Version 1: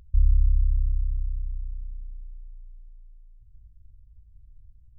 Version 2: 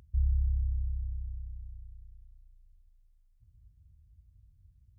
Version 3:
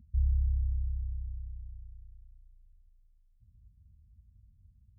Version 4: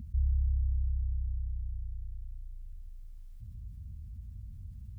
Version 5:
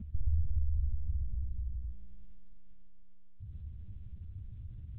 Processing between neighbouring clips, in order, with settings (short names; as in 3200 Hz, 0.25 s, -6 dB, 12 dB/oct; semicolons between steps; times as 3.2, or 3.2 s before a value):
HPF 74 Hz 12 dB/oct
EQ curve 140 Hz 0 dB, 230 Hz +9 dB, 350 Hz -20 dB
fast leveller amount 50%; gain -1.5 dB
monotone LPC vocoder at 8 kHz 190 Hz